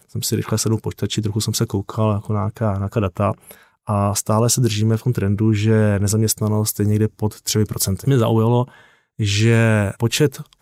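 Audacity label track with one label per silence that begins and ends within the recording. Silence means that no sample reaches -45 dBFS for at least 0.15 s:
3.670000	3.870000	silence
8.950000	9.190000	silence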